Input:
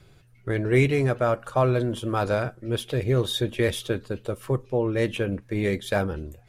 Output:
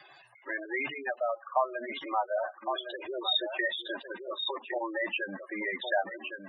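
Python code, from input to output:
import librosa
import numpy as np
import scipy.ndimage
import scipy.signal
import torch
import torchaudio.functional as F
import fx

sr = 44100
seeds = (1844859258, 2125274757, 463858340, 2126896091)

y = fx.block_float(x, sr, bits=3)
y = fx.rider(y, sr, range_db=4, speed_s=2.0)
y = scipy.signal.sosfilt(scipy.signal.butter(2, 610.0, 'highpass', fs=sr, output='sos'), y)
y = fx.high_shelf(y, sr, hz=6100.0, db=-8.0)
y = y + 10.0 ** (-8.5 / 20.0) * np.pad(y, (int(1111 * sr / 1000.0), 0))[:len(y)]
y = fx.spec_gate(y, sr, threshold_db=-10, keep='strong')
y = y + 0.98 * np.pad(y, (int(1.1 * sr / 1000.0), 0))[:len(y)]
y = fx.band_squash(y, sr, depth_pct=40)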